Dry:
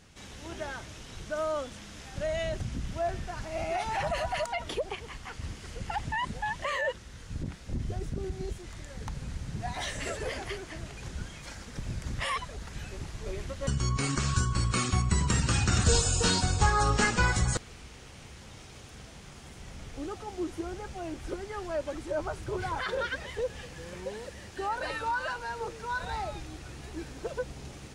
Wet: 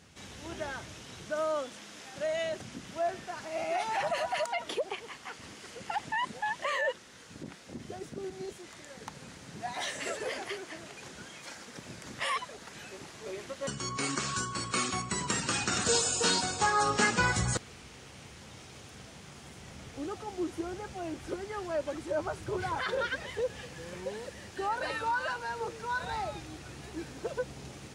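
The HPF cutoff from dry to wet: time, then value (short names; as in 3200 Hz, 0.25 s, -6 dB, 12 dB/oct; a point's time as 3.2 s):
0.77 s 80 Hz
1.78 s 260 Hz
16.79 s 260 Hz
17.45 s 95 Hz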